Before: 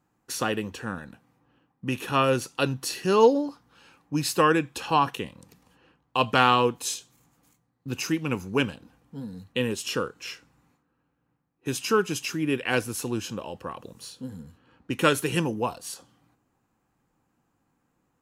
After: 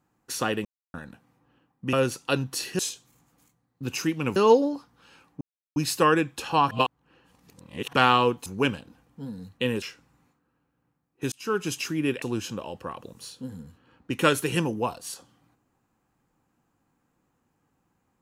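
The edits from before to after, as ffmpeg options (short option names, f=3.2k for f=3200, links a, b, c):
-filter_complex "[0:a]asplit=13[a][b][c][d][e][f][g][h][i][j][k][l][m];[a]atrim=end=0.65,asetpts=PTS-STARTPTS,afade=t=out:st=0.646:d=0.004:c=hsin[n];[b]atrim=start=0.65:end=0.94,asetpts=PTS-STARTPTS,volume=0[o];[c]atrim=start=0.94:end=1.932,asetpts=PTS-STARTPTS,afade=t=in:d=0.004:c=hsin[p];[d]atrim=start=2.228:end=3.092[q];[e]atrim=start=6.838:end=8.412[r];[f]atrim=start=3.088:end=4.14,asetpts=PTS-STARTPTS,afade=t=out:st=1.048:d=0.004:c=hsin,apad=pad_dur=0.35[s];[g]atrim=start=4.14:end=5.092,asetpts=PTS-STARTPTS,afade=t=in:d=0.004:c=hsin[t];[h]atrim=start=5.088:end=6.312,asetpts=PTS-STARTPTS,areverse[u];[i]atrim=start=6.308:end=6.842[v];[j]atrim=start=8.408:end=9.772[w];[k]atrim=start=10.258:end=11.76,asetpts=PTS-STARTPTS,afade=t=out:st=1.498:d=0.004:c=hsin[x];[l]atrim=start=11.76:end=12.662,asetpts=PTS-STARTPTS,afade=t=in:d=0.35[y];[m]atrim=start=13.018[z];[n][o][p]concat=n=3:v=0:a=1[aa];[aa][q]acrossfade=d=0.004:c1=hsin:c2=hsin[ab];[ab][r]acrossfade=d=0.004:c1=hsin:c2=hsin[ac];[s][t]concat=n=2:v=0:a=1[ad];[ac][ad]acrossfade=d=0.004:c1=hsin:c2=hsin[ae];[ae][u]acrossfade=d=0.004:c1=hsin:c2=hsin[af];[af][v]acrossfade=d=0.004:c1=hsin:c2=hsin[ag];[ag][w]acrossfade=d=0.004:c1=hsin:c2=hsin[ah];[x][y]concat=n=2:v=0:a=1[ai];[ah][ai]acrossfade=d=0.004:c1=hsin:c2=hsin[aj];[aj][z]acrossfade=d=0.004:c1=hsin:c2=hsin"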